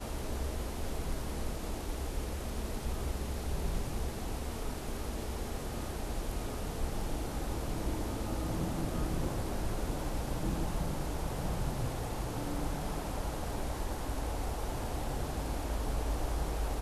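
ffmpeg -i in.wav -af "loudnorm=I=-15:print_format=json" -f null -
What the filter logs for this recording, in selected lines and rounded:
"input_i" : "-37.5",
"input_tp" : "-20.0",
"input_lra" : "2.3",
"input_thresh" : "-47.5",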